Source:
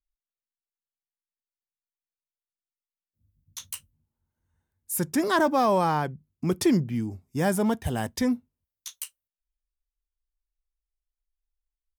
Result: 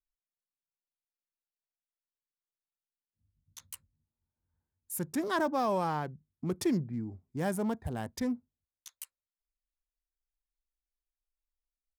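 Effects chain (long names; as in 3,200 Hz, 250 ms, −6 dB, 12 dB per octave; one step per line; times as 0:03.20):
adaptive Wiener filter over 15 samples
level −7.5 dB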